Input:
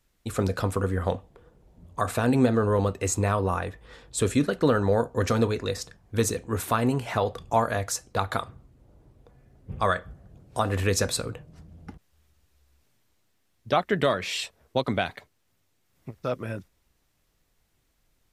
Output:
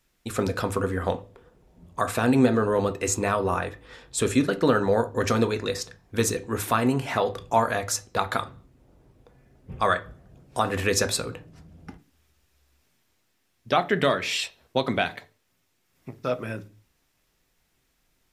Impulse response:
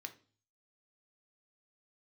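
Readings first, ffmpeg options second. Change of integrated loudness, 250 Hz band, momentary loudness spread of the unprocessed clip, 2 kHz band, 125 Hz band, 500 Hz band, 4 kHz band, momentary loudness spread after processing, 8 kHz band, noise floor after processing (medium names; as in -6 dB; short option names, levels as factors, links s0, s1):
+1.0 dB, +1.5 dB, 12 LU, +3.5 dB, -2.5 dB, +1.0 dB, +3.0 dB, 11 LU, +2.0 dB, -71 dBFS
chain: -filter_complex "[0:a]asplit=2[s0][s1];[1:a]atrim=start_sample=2205,afade=t=out:st=0.31:d=0.01,atrim=end_sample=14112[s2];[s1][s2]afir=irnorm=-1:irlink=0,volume=1.78[s3];[s0][s3]amix=inputs=2:normalize=0,volume=0.668"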